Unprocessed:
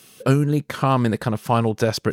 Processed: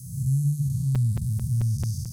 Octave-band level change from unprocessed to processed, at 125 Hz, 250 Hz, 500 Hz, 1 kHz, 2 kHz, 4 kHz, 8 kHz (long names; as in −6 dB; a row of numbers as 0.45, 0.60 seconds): 0.0 dB, −10.5 dB, below −30 dB, below −30 dB, below −25 dB, below −15 dB, −2.0 dB